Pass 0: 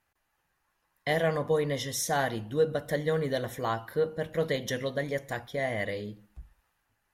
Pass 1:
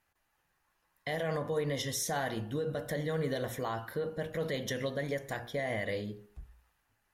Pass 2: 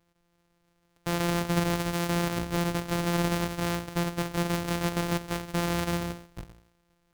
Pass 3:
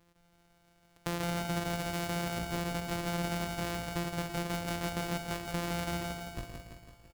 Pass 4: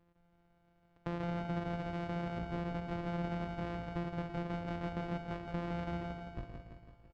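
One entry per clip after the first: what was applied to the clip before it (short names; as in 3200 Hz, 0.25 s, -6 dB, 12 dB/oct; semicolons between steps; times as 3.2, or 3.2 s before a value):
limiter -24.5 dBFS, peak gain reduction 9.5 dB; de-hum 59 Hz, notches 30
sample sorter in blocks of 256 samples; gain +6 dB
compressor 2.5:1, threshold -41 dBFS, peak gain reduction 13 dB; on a send: feedback echo 0.167 s, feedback 59%, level -5 dB; on the sum: gain +4 dB
tape spacing loss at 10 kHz 36 dB; gain -1.5 dB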